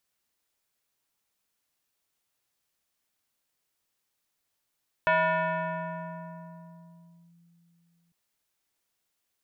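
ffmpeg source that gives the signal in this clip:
-f lavfi -i "aevalsrc='0.112*pow(10,-3*t/3.68)*sin(2*PI*170*t+2.2*clip(1-t/2.27,0,1)*sin(2*PI*4.74*170*t))':d=3.05:s=44100"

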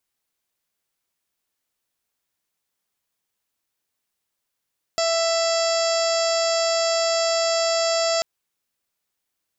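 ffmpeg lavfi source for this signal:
-f lavfi -i "aevalsrc='0.0944*sin(2*PI*663*t)+0.0335*sin(2*PI*1326*t)+0.02*sin(2*PI*1989*t)+0.0168*sin(2*PI*2652*t)+0.0178*sin(2*PI*3315*t)+0.015*sin(2*PI*3978*t)+0.0376*sin(2*PI*4641*t)+0.0355*sin(2*PI*5304*t)+0.0112*sin(2*PI*5967*t)+0.0119*sin(2*PI*6630*t)+0.0299*sin(2*PI*7293*t)':d=3.24:s=44100"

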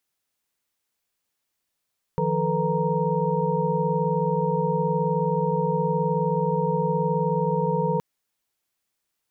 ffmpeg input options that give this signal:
-f lavfi -i "aevalsrc='0.0447*(sin(2*PI*155.56*t)+sin(2*PI*174.61*t)+sin(2*PI*440*t)+sin(2*PI*493.88*t)+sin(2*PI*932.33*t))':d=5.82:s=44100"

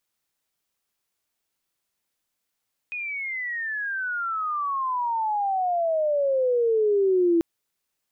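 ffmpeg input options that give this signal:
-f lavfi -i "aevalsrc='pow(10,(-28.5+12*t/4.49)/20)*sin(2*PI*2500*4.49/log(330/2500)*(exp(log(330/2500)*t/4.49)-1))':d=4.49:s=44100"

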